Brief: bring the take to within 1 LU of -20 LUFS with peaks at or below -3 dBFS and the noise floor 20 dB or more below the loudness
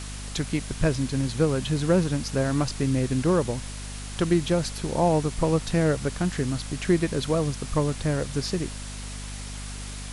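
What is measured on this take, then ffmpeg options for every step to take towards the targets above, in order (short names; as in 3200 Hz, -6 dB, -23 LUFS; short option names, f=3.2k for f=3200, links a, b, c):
hum 50 Hz; harmonics up to 250 Hz; hum level -35 dBFS; noise floor -36 dBFS; noise floor target -46 dBFS; loudness -25.5 LUFS; peak -9.5 dBFS; loudness target -20.0 LUFS
-> -af "bandreject=f=50:t=h:w=4,bandreject=f=100:t=h:w=4,bandreject=f=150:t=h:w=4,bandreject=f=200:t=h:w=4,bandreject=f=250:t=h:w=4"
-af "afftdn=nr=10:nf=-36"
-af "volume=5.5dB"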